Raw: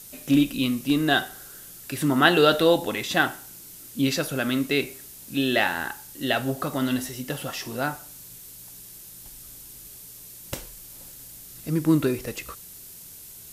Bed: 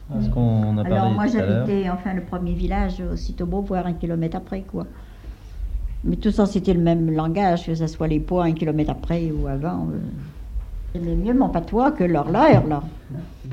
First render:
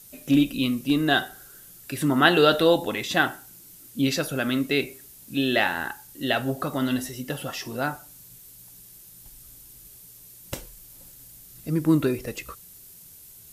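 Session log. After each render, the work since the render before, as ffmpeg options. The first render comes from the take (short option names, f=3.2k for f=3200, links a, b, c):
-af "afftdn=nr=6:nf=-44"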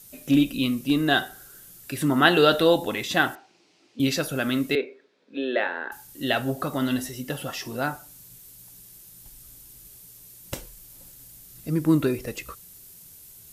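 -filter_complex "[0:a]asettb=1/sr,asplit=3[a][b][c];[a]atrim=end=3.354[d];[b]atrim=start=3.35:end=4,asetpts=PTS-STARTPTS,afade=t=in:d=0.004:c=qsin,afade=t=out:st=0.646:d=0.004:c=qsin,highpass=360,equalizer=f=360:t=q:w=4:g=5,equalizer=f=750:t=q:w=4:g=6,equalizer=f=1.5k:t=q:w=4:g=-6,equalizer=f=2.5k:t=q:w=4:g=4,equalizer=f=3.5k:t=q:w=4:g=-4,lowpass=f=4.6k:w=0.5412,lowpass=f=4.6k:w=1.3066[e];[c]atrim=start=3.996[f];[d][e]acrossfade=d=0.004:c1=hsin:c2=qsin[g];[g][f]acrossfade=d=0.004:c1=qsin:c2=hsin,asettb=1/sr,asplit=3[h][i][j];[h]atrim=end=4.754[k];[i]atrim=start=4.75:end=5.92,asetpts=PTS-STARTPTS,afade=t=in:d=0.004:c=qsin,afade=t=out:st=1.166:d=0.004:c=qsin,highpass=f=290:w=0.5412,highpass=f=290:w=1.3066,equalizer=f=320:t=q:w=4:g=-5,equalizer=f=480:t=q:w=4:g=8,equalizer=f=790:t=q:w=4:g=-7,equalizer=f=1.2k:t=q:w=4:g=-4,equalizer=f=2k:t=q:w=4:g=-4,equalizer=f=2.9k:t=q:w=4:g=-10,lowpass=f=3.1k:w=0.5412,lowpass=f=3.1k:w=1.3066[l];[j]atrim=start=5.916[m];[k][l]acrossfade=d=0.004:c1=hsin:c2=qsin[n];[n][m]acrossfade=d=0.004:c1=qsin:c2=hsin"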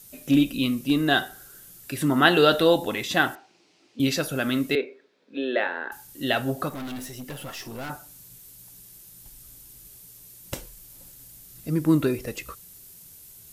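-filter_complex "[0:a]asettb=1/sr,asplit=3[a][b][c];[a]atrim=end=6.694[d];[b]atrim=start=6.69:end=7.9,asetpts=PTS-STARTPTS,afade=t=in:d=0.004:c=qsin,afade=t=out:st=1.206:d=0.004:c=qsin,aeval=exprs='(tanh(39.8*val(0)+0.4)-tanh(0.4))/39.8':c=same[e];[c]atrim=start=7.896[f];[d][e]acrossfade=d=0.004:c1=hsin:c2=qsin[g];[g][f]acrossfade=d=0.004:c1=qsin:c2=hsin"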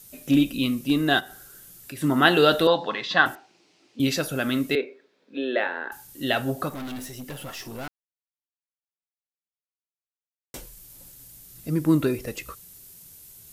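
-filter_complex "[0:a]asplit=3[a][b][c];[a]afade=t=out:st=1.19:d=0.02[d];[b]acompressor=threshold=-38dB:ratio=2:attack=3.2:release=140:knee=1:detection=peak,afade=t=in:st=1.19:d=0.02,afade=t=out:st=2.02:d=0.02[e];[c]afade=t=in:st=2.02:d=0.02[f];[d][e][f]amix=inputs=3:normalize=0,asettb=1/sr,asplit=3[g][h][i];[g]atrim=end=2.674[j];[h]atrim=start=2.67:end=3.26,asetpts=PTS-STARTPTS,afade=t=in:d=0.004:c=qsin,afade=t=out:st=0.586:d=0.004:c=qsin,highpass=f=160:w=0.5412,highpass=f=160:w=1.3066,equalizer=f=240:t=q:w=4:g=-8,equalizer=f=350:t=q:w=4:g=-8,equalizer=f=1.1k:t=q:w=4:g=9,equalizer=f=1.7k:t=q:w=4:g=5,equalizer=f=2.3k:t=q:w=4:g=-5,equalizer=f=4.4k:t=q:w=4:g=6,lowpass=f=4.8k:w=0.5412,lowpass=f=4.8k:w=1.3066[k];[i]atrim=start=3.256[l];[j][k]acrossfade=d=0.004:c1=hsin:c2=qsin[m];[m][l]acrossfade=d=0.004:c1=qsin:c2=hsin,asplit=3[n][o][p];[n]atrim=end=7.88,asetpts=PTS-STARTPTS,afade=t=out:st=7.876:d=0.004:c=hsin[q];[o]atrim=start=7.88:end=10.54,asetpts=PTS-STARTPTS,volume=0[r];[p]atrim=start=10.54,asetpts=PTS-STARTPTS,afade=t=in:d=0.004:c=hsin[s];[q][r][s]concat=n=3:v=0:a=1"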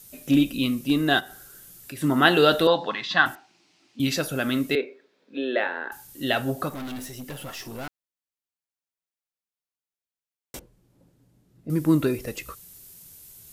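-filter_complex "[0:a]asettb=1/sr,asplit=3[a][b][c];[a]atrim=end=2.914[d];[b]atrim=start=2.91:end=4.12,asetpts=PTS-STARTPTS,afade=t=in:d=0.004:c=qsin,afade=t=out:st=1.206:d=0.004:c=qsin,equalizer=f=470:w=2.3:g=-11[e];[c]atrim=start=4.116[f];[d][e]acrossfade=d=0.004:c1=hsin:c2=qsin[g];[g][f]acrossfade=d=0.004:c1=qsin:c2=hsin,asettb=1/sr,asplit=3[h][i][j];[h]atrim=end=10.594[k];[i]atrim=start=10.59:end=11.7,asetpts=PTS-STARTPTS,afade=t=in:d=0.004:c=qsin,afade=t=out:st=1.106:d=0.004:c=qsin,bandpass=f=250:t=q:w=0.7[l];[j]atrim=start=11.696[m];[k][l]acrossfade=d=0.004:c1=hsin:c2=qsin[n];[n][m]acrossfade=d=0.004:c1=qsin:c2=hsin"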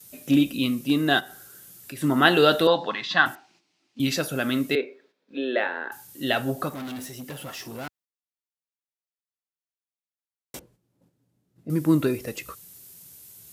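-af "highpass=87,agate=range=-9dB:threshold=-58dB:ratio=16:detection=peak"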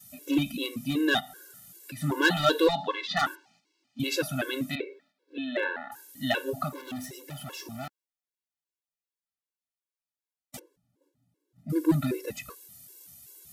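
-af "asoftclip=type=hard:threshold=-13dB,afftfilt=real='re*gt(sin(2*PI*2.6*pts/sr)*(1-2*mod(floor(b*sr/1024/290),2)),0)':imag='im*gt(sin(2*PI*2.6*pts/sr)*(1-2*mod(floor(b*sr/1024/290),2)),0)':win_size=1024:overlap=0.75"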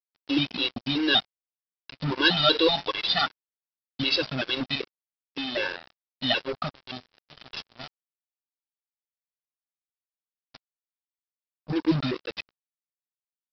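-af "aexciter=amount=3.7:drive=4.1:freq=2.8k,aresample=11025,acrusher=bits=4:mix=0:aa=0.5,aresample=44100"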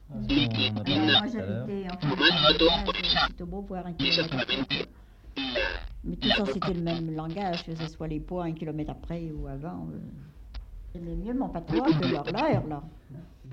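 -filter_complex "[1:a]volume=-12dB[a];[0:a][a]amix=inputs=2:normalize=0"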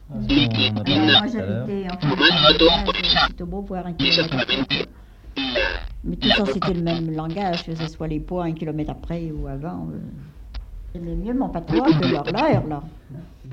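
-af "volume=7dB,alimiter=limit=-1dB:level=0:latency=1"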